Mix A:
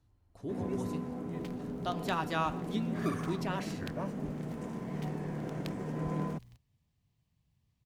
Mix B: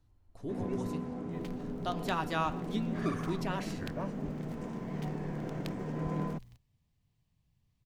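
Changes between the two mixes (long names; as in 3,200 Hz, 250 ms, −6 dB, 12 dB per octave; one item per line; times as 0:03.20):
first sound: add low-pass filter 7,100 Hz 12 dB per octave
master: remove high-pass filter 40 Hz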